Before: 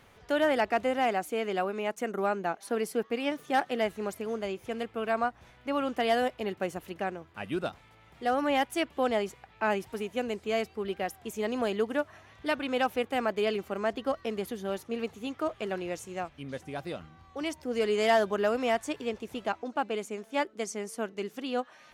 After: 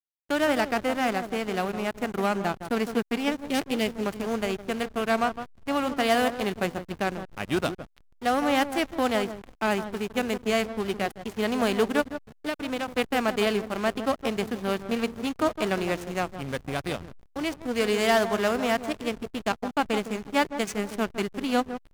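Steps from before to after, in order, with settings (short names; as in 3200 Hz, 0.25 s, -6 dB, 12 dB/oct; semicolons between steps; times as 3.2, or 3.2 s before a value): spectral whitening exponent 0.6; 3.47–4.06 band shelf 1100 Hz -11 dB; 12.01–12.88 compressor 8:1, threshold -30 dBFS, peak gain reduction 8.5 dB; sample leveller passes 1; vocal rider within 4 dB 2 s; on a send: echo with dull and thin repeats by turns 0.159 s, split 1700 Hz, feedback 53%, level -9 dB; on the sum: backlash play -28.5 dBFS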